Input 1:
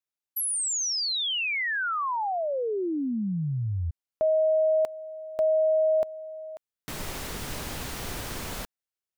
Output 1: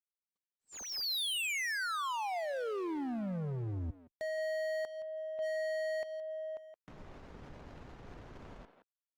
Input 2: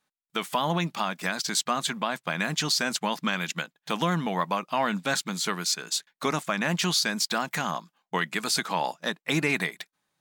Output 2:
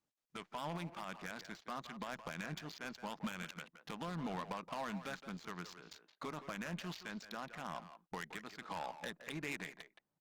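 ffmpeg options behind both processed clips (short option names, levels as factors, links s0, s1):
-filter_complex "[0:a]aemphasis=mode=production:type=75kf,acompressor=threshold=0.0501:ratio=16:attack=0.13:release=350:knee=1:detection=peak,aresample=16000,aresample=44100,adynamicsmooth=sensitivity=6:basefreq=680,aeval=exprs='0.0355*(abs(mod(val(0)/0.0355+3,4)-2)-1)':c=same,asplit=2[s0][s1];[s1]adelay=170,highpass=300,lowpass=3400,asoftclip=type=hard:threshold=0.0126,volume=0.398[s2];[s0][s2]amix=inputs=2:normalize=0,volume=0.631" -ar 48000 -c:a libopus -b:a 32k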